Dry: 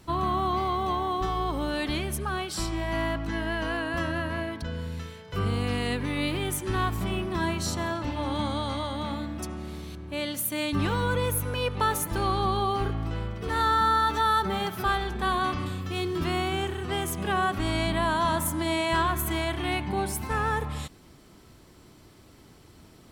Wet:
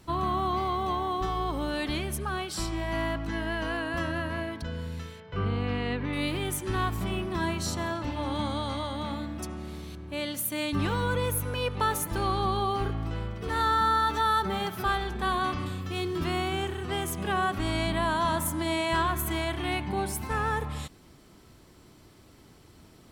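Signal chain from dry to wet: 5.2–6.13 LPF 3000 Hz 12 dB/oct; gain -1.5 dB

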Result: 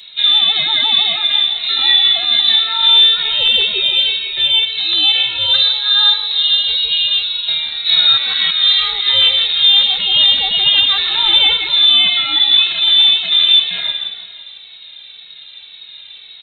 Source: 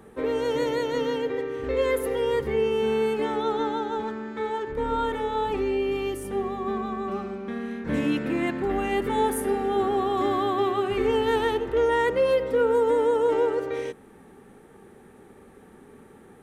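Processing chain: one-sided fold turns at -17.5 dBFS; 5.6–7.9 low shelf 110 Hz +11 dB; feedback echo 0.17 s, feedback 51%, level -8 dB; inverted band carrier 4000 Hz; maximiser +15.5 dB; endless flanger 2.3 ms -1.9 Hz

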